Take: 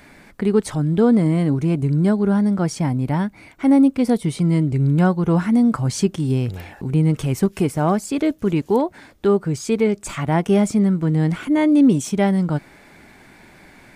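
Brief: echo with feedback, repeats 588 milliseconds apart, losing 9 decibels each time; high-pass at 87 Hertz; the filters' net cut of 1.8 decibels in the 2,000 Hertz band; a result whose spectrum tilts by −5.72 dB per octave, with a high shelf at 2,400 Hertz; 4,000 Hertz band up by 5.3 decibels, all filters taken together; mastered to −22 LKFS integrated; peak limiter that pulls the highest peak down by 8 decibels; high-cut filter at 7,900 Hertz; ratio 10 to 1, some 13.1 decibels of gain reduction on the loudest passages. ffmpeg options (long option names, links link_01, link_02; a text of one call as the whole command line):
ffmpeg -i in.wav -af "highpass=87,lowpass=7900,equalizer=frequency=2000:width_type=o:gain=-6,highshelf=frequency=2400:gain=6,equalizer=frequency=4000:width_type=o:gain=3.5,acompressor=threshold=-24dB:ratio=10,alimiter=limit=-23dB:level=0:latency=1,aecho=1:1:588|1176|1764|2352:0.355|0.124|0.0435|0.0152,volume=9dB" out.wav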